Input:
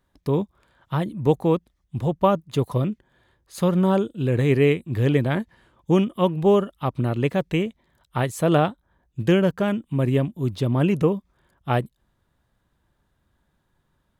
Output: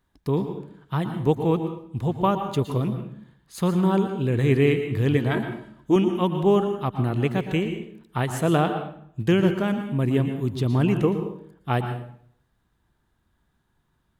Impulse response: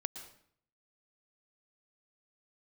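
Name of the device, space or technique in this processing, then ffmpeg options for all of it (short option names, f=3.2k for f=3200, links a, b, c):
bathroom: -filter_complex "[0:a]asettb=1/sr,asplit=3[a][b][c];[a]atrim=end=5.314[d];[b]atrim=start=5.31:end=5.96,asetpts=PTS-STARTPTS,afade=t=in:d=0.004:c=qsin,afade=t=out:st=0.646:d=0.004:c=qsin,aecho=1:1:3.1:0.65,atrim=end_sample=28665[e];[c]atrim=start=5.956[f];[d][e]acrossfade=d=0.004:c1=hsin:c2=qsin[g];[g][f]acrossfade=d=0.004:c1=qsin:c2=hsin,equalizer=f=560:w=5.7:g=-7.5[h];[1:a]atrim=start_sample=2205[i];[h][i]afir=irnorm=-1:irlink=0"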